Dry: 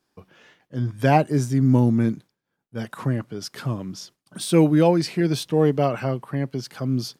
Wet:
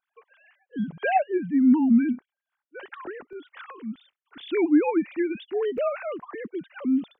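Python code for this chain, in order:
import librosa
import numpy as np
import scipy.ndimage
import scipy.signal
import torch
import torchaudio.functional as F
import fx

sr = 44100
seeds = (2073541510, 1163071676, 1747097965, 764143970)

y = fx.sine_speech(x, sr)
y = fx.peak_eq(y, sr, hz=570.0, db=fx.steps((0.0, -5.5), (3.33, -11.5), (5.78, -3.5)), octaves=1.4)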